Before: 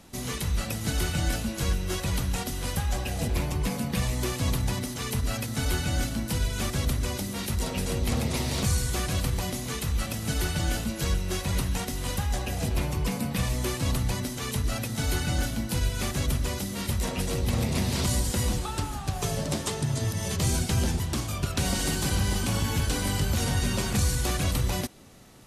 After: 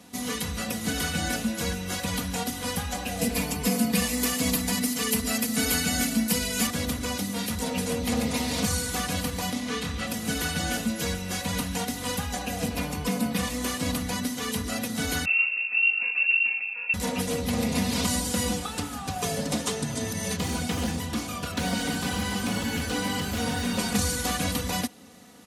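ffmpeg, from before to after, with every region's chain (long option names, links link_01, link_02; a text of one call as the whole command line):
ffmpeg -i in.wav -filter_complex "[0:a]asettb=1/sr,asplit=3[link_01][link_02][link_03];[link_01]atrim=end=3.214[link_04];[link_02]atrim=start=3.21:end=6.67,asetpts=PTS-STARTPTS,afade=type=in:duration=0.004:curve=qsin,afade=type=out:start_time=3.456:duration=0.004:curve=qsin,highshelf=frequency=5900:gain=8,aecho=1:1:4.5:0.49,atrim=end_sample=152586[link_05];[link_03]atrim=start=6.666[link_06];[link_04][link_05]acrossfade=duration=0.004:curve1=hsin:curve2=qsin[link_07];[link_07][link_06]acrossfade=duration=0.004:curve1=qsin:curve2=hsin,asettb=1/sr,asplit=3[link_08][link_09][link_10];[link_08]atrim=end=9.534[link_11];[link_09]atrim=start=9.53:end=10.07,asetpts=PTS-STARTPTS,afade=type=in:duration=0.004:curve=qsin,afade=type=out:start_time=0.536:duration=0.004:curve=qsin,lowpass=3500,aemphasis=mode=production:type=50fm,asplit=2[link_12][link_13];[link_13]adelay=29,volume=-6dB[link_14];[link_12][link_14]amix=inputs=2:normalize=0,atrim=end_sample=23814[link_15];[link_10]atrim=start=10.066[link_16];[link_11][link_15]acrossfade=duration=0.004:curve1=hsin:curve2=qsin[link_17];[link_17][link_16]acrossfade=duration=0.004:curve1=qsin:curve2=hsin,asettb=1/sr,asplit=3[link_18][link_19][link_20];[link_18]atrim=end=15.254[link_21];[link_19]atrim=start=15.25:end=16.94,asetpts=PTS-STARTPTS,afade=type=in:duration=0.004:curve=qsin,afade=type=out:start_time=1.686:duration=0.004:curve=qsin,equalizer=frequency=1900:width=0.32:gain=-10.5,lowpass=frequency=2400:width_type=q:width=0.5098,lowpass=frequency=2400:width_type=q:width=0.6013,lowpass=frequency=2400:width_type=q:width=0.9,lowpass=frequency=2400:width_type=q:width=2.563,afreqshift=-2800,highpass=140[link_22];[link_20]atrim=start=16.936[link_23];[link_21][link_22]acrossfade=duration=0.004:curve1=hsin:curve2=qsin[link_24];[link_24][link_23]acrossfade=duration=0.004:curve1=qsin:curve2=hsin,asettb=1/sr,asplit=3[link_25][link_26][link_27];[link_25]atrim=end=20.334[link_28];[link_26]atrim=start=20.33:end=23.79,asetpts=PTS-STARTPTS,afade=type=in:duration=0.004:curve=qsin,afade=type=out:start_time=3.456:duration=0.004:curve=qsin,bandreject=frequency=50.09:width_type=h:width=4,bandreject=frequency=100.18:width_type=h:width=4,bandreject=frequency=150.27:width_type=h:width=4,bandreject=frequency=200.36:width_type=h:width=4,bandreject=frequency=250.45:width_type=h:width=4,bandreject=frequency=300.54:width_type=h:width=4,bandreject=frequency=350.63:width_type=h:width=4,bandreject=frequency=400.72:width_type=h:width=4,bandreject=frequency=450.81:width_type=h:width=4,bandreject=frequency=500.9:width_type=h:width=4,bandreject=frequency=550.99:width_type=h:width=4,bandreject=frequency=601.08:width_type=h:width=4,bandreject=frequency=651.17:width_type=h:width=4,bandreject=frequency=701.26:width_type=h:width=4,bandreject=frequency=751.35:width_type=h:width=4,bandreject=frequency=801.44:width_type=h:width=4,bandreject=frequency=851.53:width_type=h:width=4,bandreject=frequency=901.62:width_type=h:width=4,bandreject=frequency=951.71:width_type=h:width=4,bandreject=frequency=1001.8:width_type=h:width=4,bandreject=frequency=1051.89:width_type=h:width=4,bandreject=frequency=1101.98:width_type=h:width=4,bandreject=frequency=1152.07:width_type=h:width=4,bandreject=frequency=1202.16:width_type=h:width=4,bandreject=frequency=1252.25:width_type=h:width=4,bandreject=frequency=1302.34:width_type=h:width=4,bandreject=frequency=1352.43:width_type=h:width=4,acrossover=split=4000[link_29][link_30];[link_30]acompressor=threshold=-38dB:ratio=4:attack=1:release=60[link_31];[link_29][link_31]amix=inputs=2:normalize=0,aeval=exprs='0.0891*(abs(mod(val(0)/0.0891+3,4)-2)-1)':channel_layout=same[link_32];[link_27]atrim=start=23.786[link_33];[link_28][link_32]acrossfade=duration=0.004:curve1=hsin:curve2=qsin[link_34];[link_34][link_33]acrossfade=duration=0.004:curve1=qsin:curve2=hsin,highpass=frequency=84:width=0.5412,highpass=frequency=84:width=1.3066,aecho=1:1:4.1:0.82" out.wav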